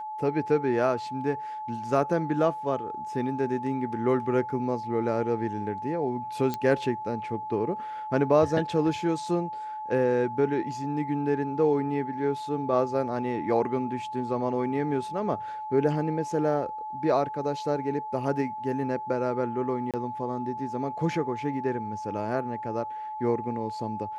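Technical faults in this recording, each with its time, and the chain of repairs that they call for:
whine 860 Hz -33 dBFS
6.54 s: pop -16 dBFS
19.91–19.94 s: dropout 27 ms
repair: de-click; band-stop 860 Hz, Q 30; interpolate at 19.91 s, 27 ms

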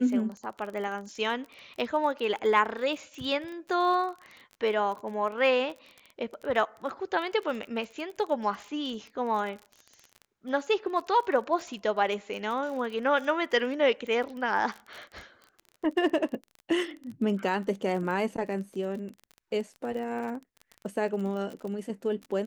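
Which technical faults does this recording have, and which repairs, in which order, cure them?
crackle 29 per s -36 dBFS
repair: de-click

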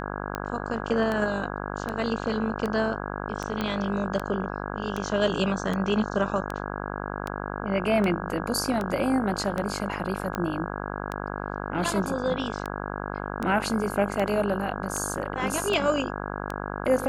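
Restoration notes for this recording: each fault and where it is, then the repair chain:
buzz 50 Hz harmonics 33 -33 dBFS
tick 78 rpm -16 dBFS
3.61 s: pop -14 dBFS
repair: de-click; de-hum 50 Hz, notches 33

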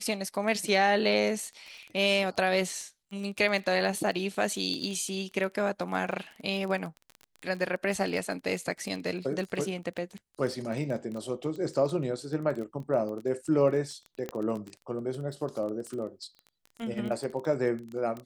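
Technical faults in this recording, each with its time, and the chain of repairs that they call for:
crackle 20 per s -34 dBFS
14.29 s: pop -20 dBFS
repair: de-click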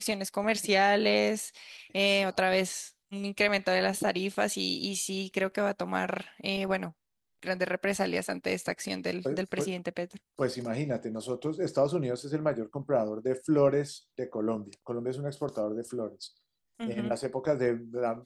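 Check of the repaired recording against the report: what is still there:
nothing left

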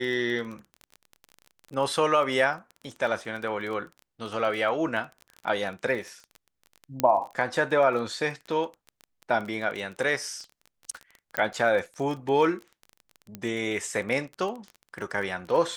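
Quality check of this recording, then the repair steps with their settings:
crackle 23 per s -33 dBFS
7.00 s: pop -9 dBFS
11.37 s: pop -9 dBFS
13.35 s: pop -21 dBFS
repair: de-click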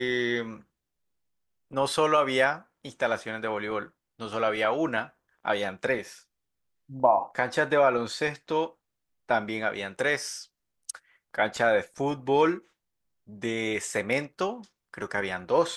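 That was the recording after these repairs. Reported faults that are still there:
nothing left

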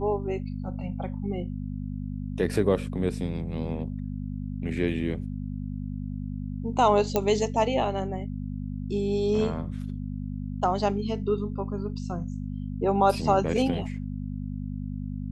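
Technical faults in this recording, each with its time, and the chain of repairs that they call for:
hum 50 Hz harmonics 5 -33 dBFS
7.16 s: pop -10 dBFS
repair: de-click; de-hum 50 Hz, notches 5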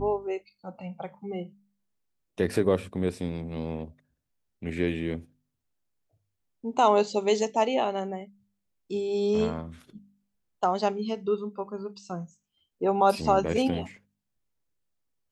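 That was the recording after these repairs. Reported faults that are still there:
nothing left

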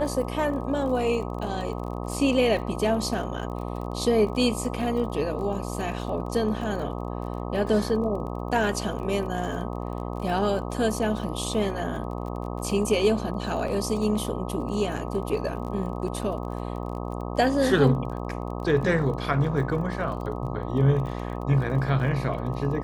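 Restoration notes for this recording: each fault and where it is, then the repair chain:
buzz 60 Hz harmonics 21 -32 dBFS
crackle 27 per s -35 dBFS
13.68 s: dropout 2.7 ms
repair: de-click; de-hum 60 Hz, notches 21; interpolate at 13.68 s, 2.7 ms

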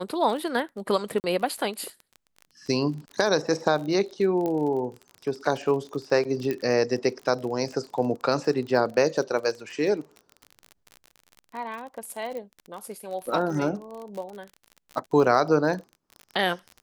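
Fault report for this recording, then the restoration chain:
crackle 34 per s -33 dBFS
1.20–1.24 s: dropout 39 ms
4.46 s: pop -17 dBFS
6.51 s: pop -16 dBFS
12.37 s: pop -24 dBFS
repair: de-click; interpolate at 1.20 s, 39 ms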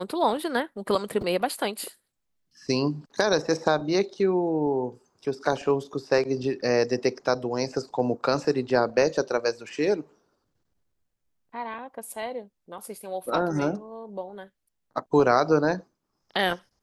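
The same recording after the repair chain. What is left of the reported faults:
nothing left

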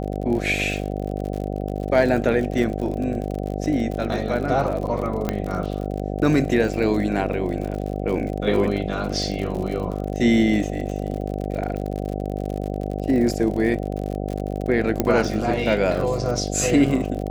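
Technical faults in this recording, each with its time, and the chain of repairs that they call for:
buzz 50 Hz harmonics 15 -27 dBFS
crackle 53 per s -28 dBFS
5.29 s: pop -9 dBFS
15.00 s: pop -6 dBFS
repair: de-click; de-hum 50 Hz, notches 15

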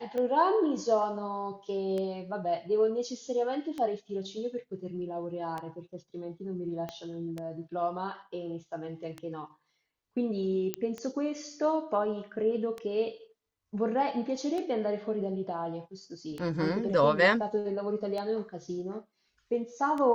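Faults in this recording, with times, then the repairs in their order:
tick 33 1/3 rpm -23 dBFS
6.89 s: pop -23 dBFS
10.74 s: pop -15 dBFS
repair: de-click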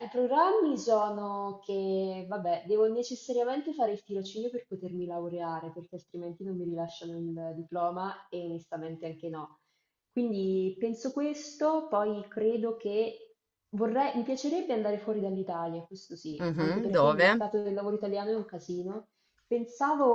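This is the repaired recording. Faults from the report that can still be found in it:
6.89 s: pop

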